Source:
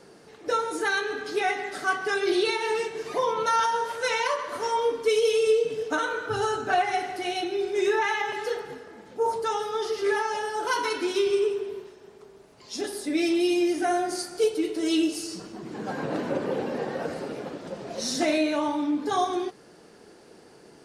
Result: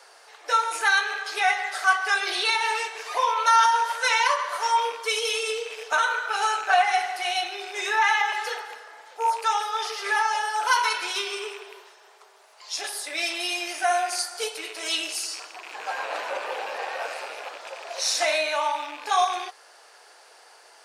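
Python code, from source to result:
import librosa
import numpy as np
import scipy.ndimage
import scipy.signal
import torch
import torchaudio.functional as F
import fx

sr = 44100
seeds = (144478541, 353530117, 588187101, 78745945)

y = fx.rattle_buzz(x, sr, strikes_db=-42.0, level_db=-34.0)
y = scipy.signal.sosfilt(scipy.signal.butter(4, 700.0, 'highpass', fs=sr, output='sos'), y)
y = F.gain(torch.from_numpy(y), 6.0).numpy()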